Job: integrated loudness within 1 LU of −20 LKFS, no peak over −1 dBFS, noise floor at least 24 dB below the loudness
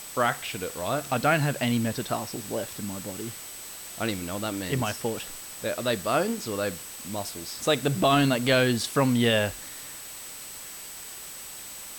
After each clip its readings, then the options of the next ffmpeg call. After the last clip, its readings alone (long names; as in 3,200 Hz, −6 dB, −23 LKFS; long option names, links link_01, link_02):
interfering tone 8,000 Hz; level of the tone −43 dBFS; background noise floor −41 dBFS; target noise floor −52 dBFS; integrated loudness −28.0 LKFS; sample peak −10.5 dBFS; target loudness −20.0 LKFS
→ -af "bandreject=frequency=8000:width=30"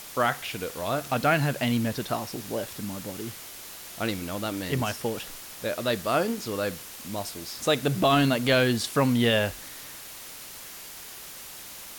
interfering tone none found; background noise floor −43 dBFS; target noise floor −51 dBFS
→ -af "afftdn=noise_reduction=8:noise_floor=-43"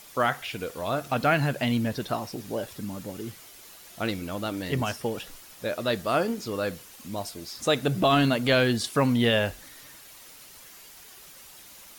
background noise floor −49 dBFS; target noise floor −51 dBFS
→ -af "afftdn=noise_reduction=6:noise_floor=-49"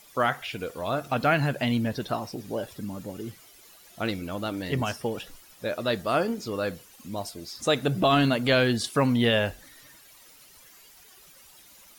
background noise floor −53 dBFS; integrated loudness −27.0 LKFS; sample peak −11.0 dBFS; target loudness −20.0 LKFS
→ -af "volume=7dB"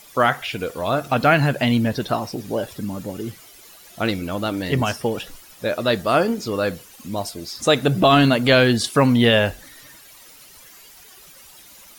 integrated loudness −20.0 LKFS; sample peak −4.0 dBFS; background noise floor −46 dBFS